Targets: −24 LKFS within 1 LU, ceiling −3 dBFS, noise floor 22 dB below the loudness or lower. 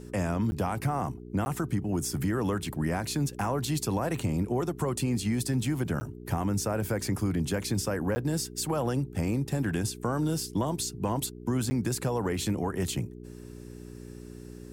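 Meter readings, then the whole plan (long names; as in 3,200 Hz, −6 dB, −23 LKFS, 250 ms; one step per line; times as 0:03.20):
number of dropouts 5; longest dropout 10 ms; mains hum 60 Hz; hum harmonics up to 420 Hz; level of the hum −43 dBFS; integrated loudness −30.0 LKFS; sample peak −17.5 dBFS; target loudness −24.0 LKFS
→ repair the gap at 0:00.51/0:01.45/0:06.00/0:08.15/0:11.70, 10 ms
hum removal 60 Hz, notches 7
level +6 dB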